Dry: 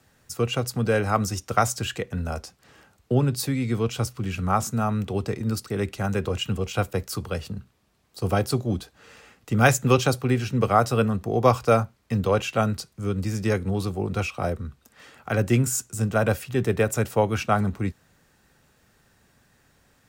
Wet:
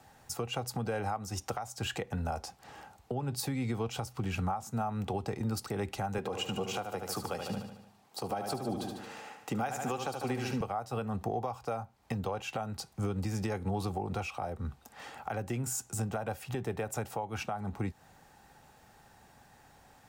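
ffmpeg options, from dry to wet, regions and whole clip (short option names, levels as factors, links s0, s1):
-filter_complex "[0:a]asettb=1/sr,asplit=3[s0][s1][s2];[s0]atrim=end=6.184[s3];[s1]atrim=start=6.18:end=10.61,asetpts=PTS-STARTPTS,afade=t=in:d=0.004:c=qsin,afade=t=out:st=4.426:d=0.004:c=qsin,highpass=170,aecho=1:1:74|148|222|296|370|444|518:0.376|0.207|0.114|0.0625|0.0344|0.0189|0.0104,atrim=end_sample=195363[s4];[s2]atrim=start=10.606[s5];[s3][s4]acrossfade=d=0.004:c1=hsin:c2=qsin[s6];[s6][s5]acrossfade=d=0.004:c1=qsin:c2=hsin,equalizer=f=810:w=3.2:g=14,acompressor=threshold=0.0398:ratio=8,alimiter=limit=0.0631:level=0:latency=1:release=215"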